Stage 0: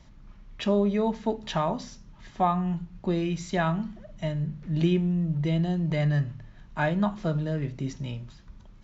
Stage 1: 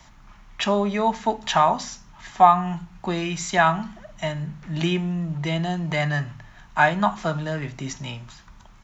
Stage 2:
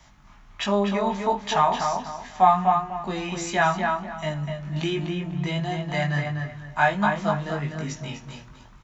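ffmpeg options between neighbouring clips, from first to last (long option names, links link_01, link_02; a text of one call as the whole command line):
ffmpeg -i in.wav -filter_complex "[0:a]firequalizer=gain_entry='entry(530,0);entry(750,12);entry(4400,8);entry(6800,14)':delay=0.05:min_phase=1,acrossover=split=120|1600[link_01][link_02][link_03];[link_01]asoftclip=type=tanh:threshold=-38.5dB[link_04];[link_04][link_02][link_03]amix=inputs=3:normalize=0" out.wav
ffmpeg -i in.wav -filter_complex "[0:a]asplit=2[link_01][link_02];[link_02]adelay=248,lowpass=frequency=3000:poles=1,volume=-4dB,asplit=2[link_03][link_04];[link_04]adelay=248,lowpass=frequency=3000:poles=1,volume=0.29,asplit=2[link_05][link_06];[link_06]adelay=248,lowpass=frequency=3000:poles=1,volume=0.29,asplit=2[link_07][link_08];[link_08]adelay=248,lowpass=frequency=3000:poles=1,volume=0.29[link_09];[link_01][link_03][link_05][link_07][link_09]amix=inputs=5:normalize=0,flanger=delay=19.5:depth=2.1:speed=1.4" out.wav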